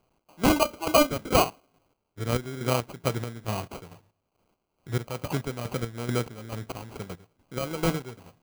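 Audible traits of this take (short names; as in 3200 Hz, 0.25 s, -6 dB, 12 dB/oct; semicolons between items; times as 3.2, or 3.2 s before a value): a quantiser's noise floor 12-bit, dither triangular; chopped level 2.3 Hz, depth 65%, duty 45%; aliases and images of a low sample rate 1800 Hz, jitter 0%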